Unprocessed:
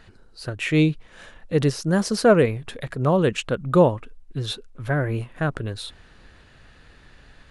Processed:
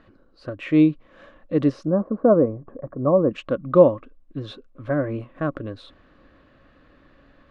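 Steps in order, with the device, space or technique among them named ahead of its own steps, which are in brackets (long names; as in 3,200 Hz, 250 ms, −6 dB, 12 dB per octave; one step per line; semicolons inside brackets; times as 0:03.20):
inside a cardboard box (low-pass filter 3,500 Hz 12 dB per octave; hollow resonant body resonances 290/550/1,100 Hz, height 14 dB, ringing for 30 ms)
0:01.87–0:03.31: low-pass filter 1,100 Hz 24 dB per octave
level −8 dB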